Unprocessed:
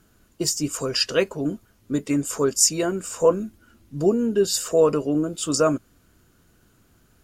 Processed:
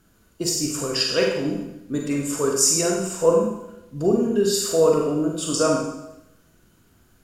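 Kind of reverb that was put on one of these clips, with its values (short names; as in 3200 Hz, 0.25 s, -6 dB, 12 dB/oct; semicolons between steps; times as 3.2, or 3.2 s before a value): Schroeder reverb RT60 0.87 s, combs from 33 ms, DRR -0.5 dB; gain -2 dB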